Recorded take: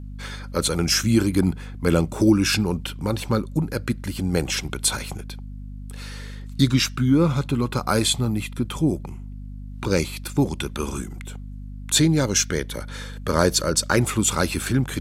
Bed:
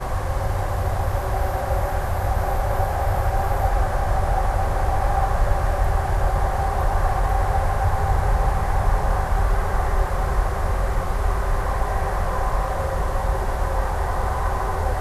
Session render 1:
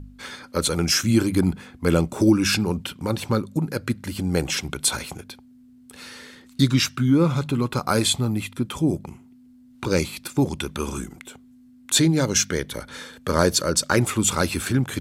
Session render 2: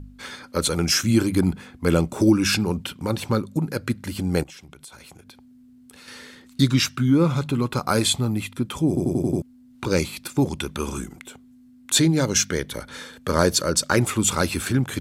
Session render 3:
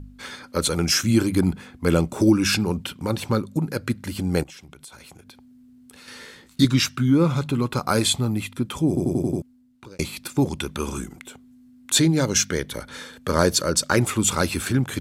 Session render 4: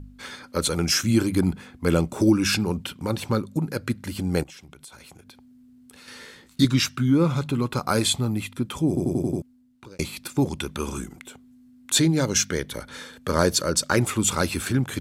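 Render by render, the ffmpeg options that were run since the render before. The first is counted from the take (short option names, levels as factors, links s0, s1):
-af "bandreject=f=50:t=h:w=4,bandreject=f=100:t=h:w=4,bandreject=f=150:t=h:w=4,bandreject=f=200:t=h:w=4"
-filter_complex "[0:a]asettb=1/sr,asplit=3[s0][s1][s2];[s0]atrim=end=4.434[s3];[s1]atrim=start=4.43:end=6.08,asetpts=PTS-STARTPTS,afade=t=in:d=0.004:c=qsin,afade=t=out:st=1.646:d=0.004:c=qsin,acompressor=threshold=0.00708:ratio=5:attack=3.2:release=140:knee=1:detection=peak[s4];[s2]atrim=start=6.076[s5];[s3][s4]acrossfade=d=0.004:c1=hsin:c2=qsin[s6];[s6][s5]acrossfade=d=0.004:c1=qsin:c2=hsin,asplit=7[s7][s8][s9][s10][s11][s12][s13];[s7]atrim=end=8.972[s14];[s8]atrim=start=8.878:end=8.972[s15];[s9]atrim=start=8.878:end=8.972[s16];[s10]atrim=start=8.878:end=8.972[s17];[s11]atrim=start=8.878:end=8.972[s18];[s12]atrim=start=8.878:end=8.972[s19];[s13]atrim=start=9.418[s20];[s14][s15]acrossfade=d=0.004:c1=hsin:c2=hsin[s21];[s21][s16]acrossfade=d=0.004:c1=hsin:c2=hsin[s22];[s22][s17]acrossfade=d=0.004:c1=hsin:c2=hsin[s23];[s23][s18]acrossfade=d=0.004:c1=hsin:c2=hsin[s24];[s24][s19]acrossfade=d=0.004:c1=hsin:c2=hsin[s25];[s25][s20]acrossfade=d=0.004:c1=hsin:c2=hsin"
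-filter_complex "[0:a]asettb=1/sr,asplit=3[s0][s1][s2];[s0]atrim=end=6.194[s3];[s1]atrim=start=6.19:end=6.65,asetpts=PTS-STARTPTS,afade=t=in:d=0.004:c=qsin,afade=t=out:st=0.456:d=0.004:c=qsin,asplit=2[s4][s5];[s5]adelay=18,volume=0.631[s6];[s4][s6]amix=inputs=2:normalize=0,atrim=end_sample=20286[s7];[s2]atrim=start=6.646[s8];[s3][s7]acrossfade=d=0.004:c1=hsin:c2=qsin[s9];[s9][s8]acrossfade=d=0.004:c1=qsin:c2=hsin,asplit=2[s10][s11];[s10]atrim=end=9.99,asetpts=PTS-STARTPTS,afade=t=out:st=9.19:d=0.8[s12];[s11]atrim=start=9.99,asetpts=PTS-STARTPTS,afade=t=in:d=0.004:c=hsin[s13];[s12][s13]concat=n=2:v=0:a=1"
-af "volume=0.841"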